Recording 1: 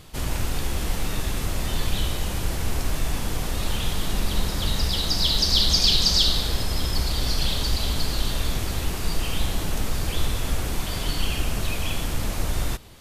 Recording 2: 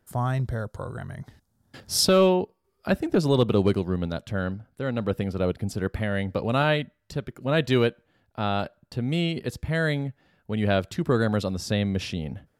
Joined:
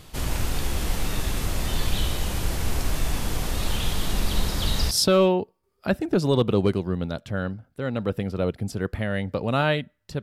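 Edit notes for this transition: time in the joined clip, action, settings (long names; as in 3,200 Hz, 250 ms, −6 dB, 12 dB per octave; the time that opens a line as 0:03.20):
recording 1
0:04.91: continue with recording 2 from 0:01.92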